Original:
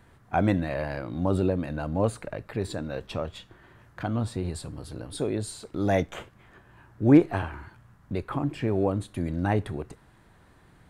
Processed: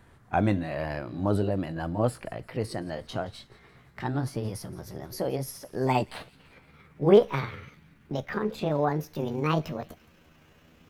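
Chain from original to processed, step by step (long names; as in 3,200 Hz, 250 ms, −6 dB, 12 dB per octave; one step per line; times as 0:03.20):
pitch glide at a constant tempo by +8.5 semitones starting unshifted
delay with a high-pass on its return 171 ms, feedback 50%, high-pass 3,000 Hz, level −19 dB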